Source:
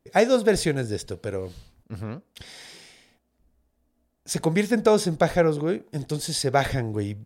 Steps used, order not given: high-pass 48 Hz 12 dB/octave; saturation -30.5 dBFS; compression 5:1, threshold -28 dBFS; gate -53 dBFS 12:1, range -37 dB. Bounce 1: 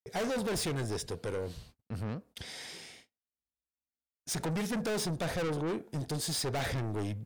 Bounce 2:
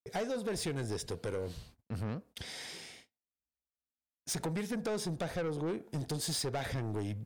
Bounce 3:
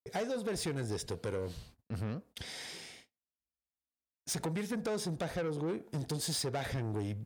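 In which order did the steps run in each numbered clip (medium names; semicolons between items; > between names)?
high-pass > gate > saturation > compression; compression > gate > high-pass > saturation; compression > gate > saturation > high-pass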